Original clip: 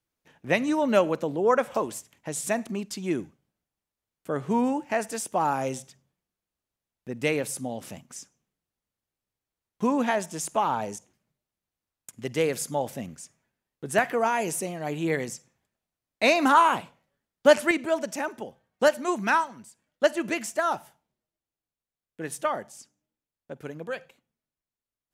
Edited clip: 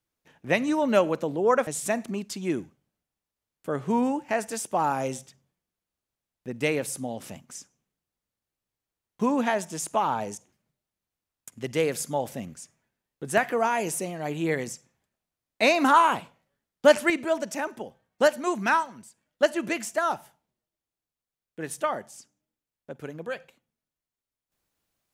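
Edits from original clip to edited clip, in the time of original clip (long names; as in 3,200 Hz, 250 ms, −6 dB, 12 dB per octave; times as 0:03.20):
0:01.67–0:02.28: remove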